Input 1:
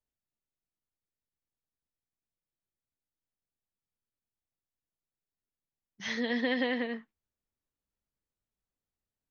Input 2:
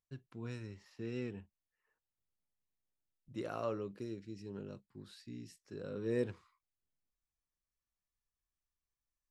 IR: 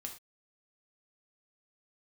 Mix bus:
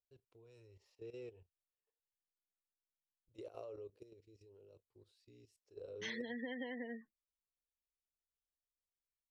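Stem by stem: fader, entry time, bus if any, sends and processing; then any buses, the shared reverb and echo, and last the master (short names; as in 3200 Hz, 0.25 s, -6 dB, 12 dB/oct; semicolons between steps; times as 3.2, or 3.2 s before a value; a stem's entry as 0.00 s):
-3.0 dB, 0.00 s, no send, spectral gate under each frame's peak -20 dB strong; gate with hold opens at -40 dBFS
-6.0 dB, 0.00 s, no send, EQ curve 100 Hz 0 dB, 190 Hz -24 dB, 440 Hz +7 dB, 1700 Hz -13 dB, 2500 Hz -2 dB; level quantiser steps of 14 dB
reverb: off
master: compressor 12:1, threshold -40 dBFS, peak gain reduction 12 dB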